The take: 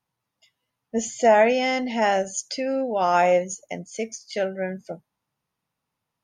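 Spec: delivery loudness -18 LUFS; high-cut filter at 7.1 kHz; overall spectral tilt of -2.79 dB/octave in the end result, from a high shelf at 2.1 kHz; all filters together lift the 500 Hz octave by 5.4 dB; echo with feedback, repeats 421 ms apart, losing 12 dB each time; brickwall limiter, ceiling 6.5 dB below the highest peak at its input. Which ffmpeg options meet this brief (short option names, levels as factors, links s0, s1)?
-af "lowpass=7100,equalizer=f=500:t=o:g=6,highshelf=f=2100:g=7.5,alimiter=limit=0.355:level=0:latency=1,aecho=1:1:421|842|1263:0.251|0.0628|0.0157,volume=1.33"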